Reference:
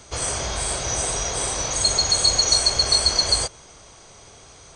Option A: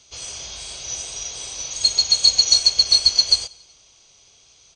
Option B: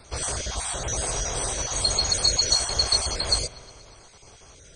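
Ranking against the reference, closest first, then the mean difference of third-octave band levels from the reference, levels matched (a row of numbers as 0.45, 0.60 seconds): B, A; 2.0, 10.5 decibels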